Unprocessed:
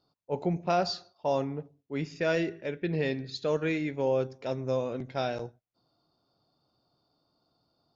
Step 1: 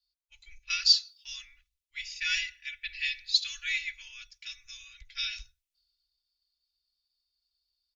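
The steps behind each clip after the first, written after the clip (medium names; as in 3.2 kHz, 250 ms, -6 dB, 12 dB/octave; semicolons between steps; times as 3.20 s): inverse Chebyshev band-stop 150–810 Hz, stop band 60 dB; comb 3.5 ms, depth 92%; three bands expanded up and down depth 40%; trim +7.5 dB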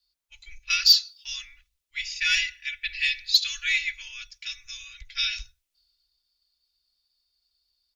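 saturation -14.5 dBFS, distortion -17 dB; trim +7 dB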